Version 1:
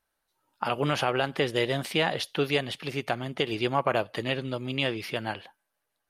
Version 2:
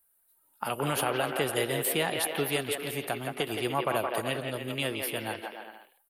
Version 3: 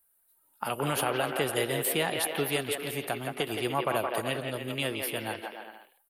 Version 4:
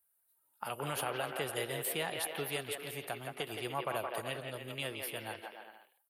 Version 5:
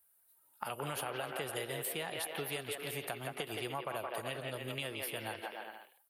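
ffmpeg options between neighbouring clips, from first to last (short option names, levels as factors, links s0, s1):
-filter_complex "[0:a]acrossover=split=250|4100[s0][s1][s2];[s1]aecho=1:1:170|297.5|393.1|464.8|518.6:0.631|0.398|0.251|0.158|0.1[s3];[s2]aexciter=amount=6.2:drive=8.8:freq=8100[s4];[s0][s3][s4]amix=inputs=3:normalize=0,volume=0.631"
-af anull
-af "highpass=41,equalizer=f=260:w=1.4:g=-5.5,volume=0.447"
-af "acompressor=threshold=0.00708:ratio=4,volume=2"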